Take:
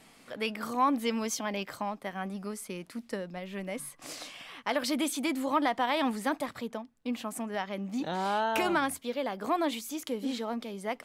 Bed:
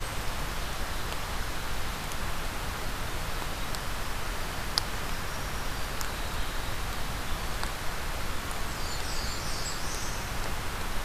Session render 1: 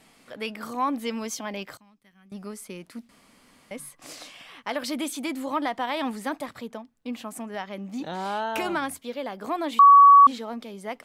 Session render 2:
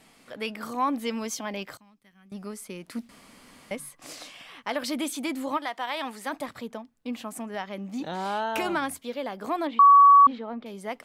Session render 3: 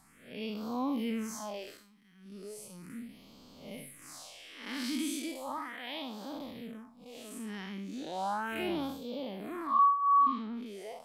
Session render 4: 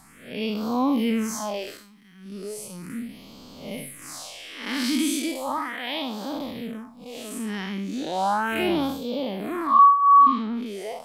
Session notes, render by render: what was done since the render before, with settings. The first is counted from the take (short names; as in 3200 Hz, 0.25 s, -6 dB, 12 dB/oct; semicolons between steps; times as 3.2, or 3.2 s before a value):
1.77–2.32 passive tone stack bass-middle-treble 6-0-2; 3.09–3.71 room tone; 9.79–10.27 bleep 1130 Hz -8.5 dBFS
2.88–3.75 gain +5 dB; 5.56–6.32 HPF 1200 Hz -> 540 Hz 6 dB/oct; 9.67–10.66 air absorption 370 m
time blur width 0.16 s; phaser stages 4, 0.36 Hz, lowest notch 100–1900 Hz
gain +10.5 dB